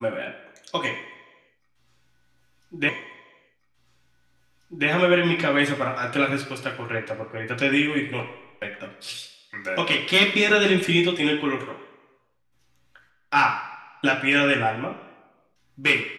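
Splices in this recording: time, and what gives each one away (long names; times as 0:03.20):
0:02.89: the same again, the last 1.99 s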